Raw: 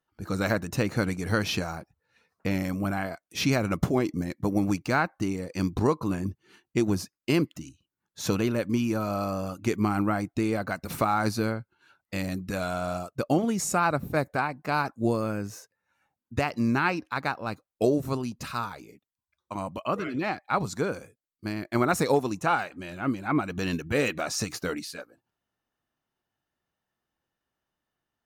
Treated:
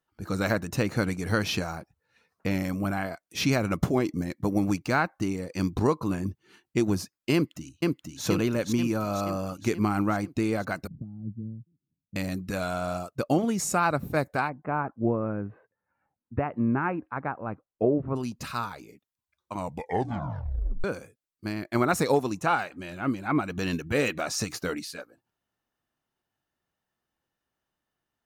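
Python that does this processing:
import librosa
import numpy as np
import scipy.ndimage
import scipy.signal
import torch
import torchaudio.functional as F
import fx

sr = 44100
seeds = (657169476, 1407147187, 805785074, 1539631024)

y = fx.echo_throw(x, sr, start_s=7.34, length_s=0.9, ms=480, feedback_pct=60, wet_db=-1.5)
y = fx.ladder_lowpass(y, sr, hz=230.0, resonance_pct=35, at=(10.87, 12.16))
y = fx.gaussian_blur(y, sr, sigma=5.0, at=(14.48, 18.15), fade=0.02)
y = fx.edit(y, sr, fx.tape_stop(start_s=19.57, length_s=1.27), tone=tone)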